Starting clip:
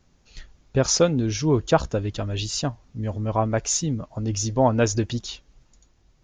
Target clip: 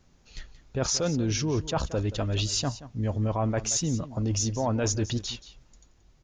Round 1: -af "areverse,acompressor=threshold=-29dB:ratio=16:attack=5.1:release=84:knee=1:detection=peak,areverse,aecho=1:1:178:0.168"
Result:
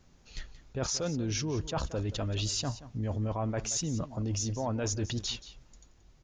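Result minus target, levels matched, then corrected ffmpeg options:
downward compressor: peak gain reduction +5.5 dB
-af "areverse,acompressor=threshold=-23dB:ratio=16:attack=5.1:release=84:knee=1:detection=peak,areverse,aecho=1:1:178:0.168"

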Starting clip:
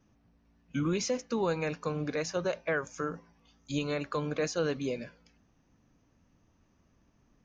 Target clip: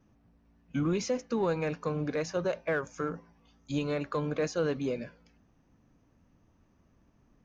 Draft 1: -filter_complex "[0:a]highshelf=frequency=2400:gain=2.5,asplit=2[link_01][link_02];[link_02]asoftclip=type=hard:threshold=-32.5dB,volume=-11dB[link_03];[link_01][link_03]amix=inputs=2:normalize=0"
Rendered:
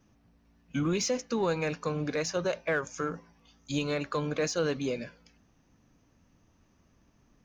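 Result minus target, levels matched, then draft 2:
4,000 Hz band +6.0 dB
-filter_complex "[0:a]highshelf=frequency=2400:gain=-7,asplit=2[link_01][link_02];[link_02]asoftclip=type=hard:threshold=-32.5dB,volume=-11dB[link_03];[link_01][link_03]amix=inputs=2:normalize=0"

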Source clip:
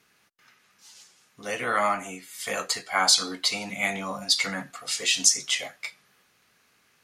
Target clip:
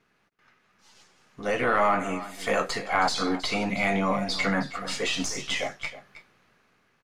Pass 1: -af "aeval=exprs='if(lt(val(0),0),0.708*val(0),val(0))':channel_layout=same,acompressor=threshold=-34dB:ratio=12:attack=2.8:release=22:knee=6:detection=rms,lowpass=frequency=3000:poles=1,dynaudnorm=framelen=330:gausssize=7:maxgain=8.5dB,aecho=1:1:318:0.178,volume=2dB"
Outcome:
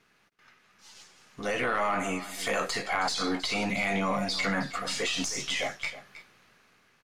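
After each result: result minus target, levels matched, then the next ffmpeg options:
downward compressor: peak gain reduction +8 dB; 4,000 Hz band +2.0 dB
-af "aeval=exprs='if(lt(val(0),0),0.708*val(0),val(0))':channel_layout=same,acompressor=threshold=-25.5dB:ratio=12:attack=2.8:release=22:knee=6:detection=rms,lowpass=frequency=3000:poles=1,dynaudnorm=framelen=330:gausssize=7:maxgain=8.5dB,aecho=1:1:318:0.178,volume=2dB"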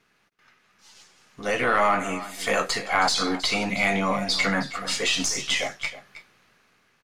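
4,000 Hz band +3.0 dB
-af "aeval=exprs='if(lt(val(0),0),0.708*val(0),val(0))':channel_layout=same,acompressor=threshold=-25.5dB:ratio=12:attack=2.8:release=22:knee=6:detection=rms,lowpass=frequency=1300:poles=1,dynaudnorm=framelen=330:gausssize=7:maxgain=8.5dB,aecho=1:1:318:0.178,volume=2dB"

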